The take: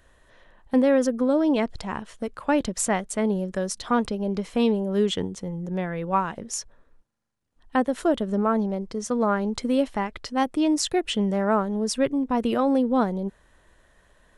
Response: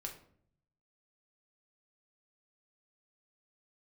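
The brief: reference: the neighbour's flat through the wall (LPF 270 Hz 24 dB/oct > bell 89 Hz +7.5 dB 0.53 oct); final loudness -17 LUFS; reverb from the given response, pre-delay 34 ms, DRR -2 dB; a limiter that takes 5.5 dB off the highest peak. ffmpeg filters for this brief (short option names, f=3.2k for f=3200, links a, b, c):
-filter_complex "[0:a]alimiter=limit=-15.5dB:level=0:latency=1,asplit=2[a][b];[1:a]atrim=start_sample=2205,adelay=34[c];[b][c]afir=irnorm=-1:irlink=0,volume=4dB[d];[a][d]amix=inputs=2:normalize=0,lowpass=f=270:w=0.5412,lowpass=f=270:w=1.3066,equalizer=f=89:t=o:w=0.53:g=7.5,volume=9dB"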